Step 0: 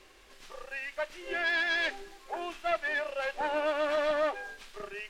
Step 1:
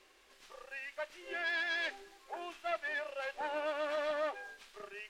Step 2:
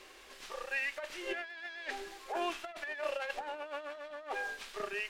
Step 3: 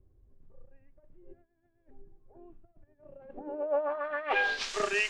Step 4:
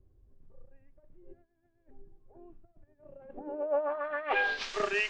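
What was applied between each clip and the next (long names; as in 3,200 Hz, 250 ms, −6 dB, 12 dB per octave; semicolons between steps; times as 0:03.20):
low-shelf EQ 170 Hz −11 dB; level −6 dB
compressor whose output falls as the input rises −42 dBFS, ratio −0.5; level +4.5 dB
low-pass filter sweep 100 Hz → 7,200 Hz, 0:02.97–0:04.75; level +8.5 dB
high-frequency loss of the air 100 metres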